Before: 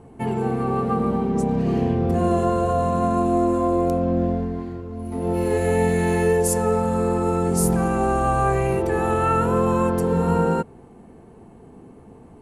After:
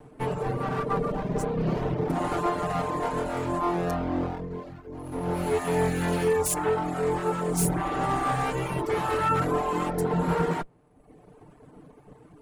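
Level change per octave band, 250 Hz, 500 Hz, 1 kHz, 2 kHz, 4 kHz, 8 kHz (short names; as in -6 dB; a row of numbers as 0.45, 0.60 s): -8.0, -6.5, -4.5, -2.5, +1.5, -3.0 dB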